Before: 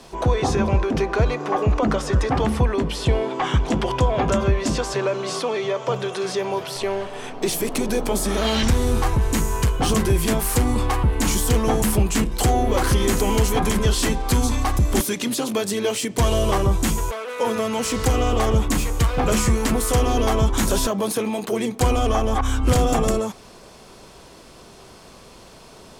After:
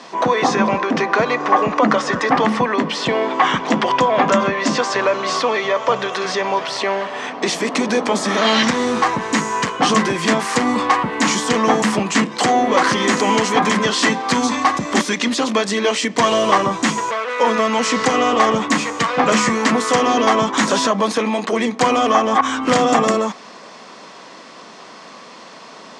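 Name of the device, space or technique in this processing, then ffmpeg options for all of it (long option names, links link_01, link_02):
television speaker: -af "highpass=frequency=200:width=0.5412,highpass=frequency=200:width=1.3066,equalizer=frequency=380:width_type=q:width=4:gain=-7,equalizer=frequency=1100:width_type=q:width=4:gain=6,equalizer=frequency=1900:width_type=q:width=4:gain=7,lowpass=frequency=6700:width=0.5412,lowpass=frequency=6700:width=1.3066,volume=6.5dB"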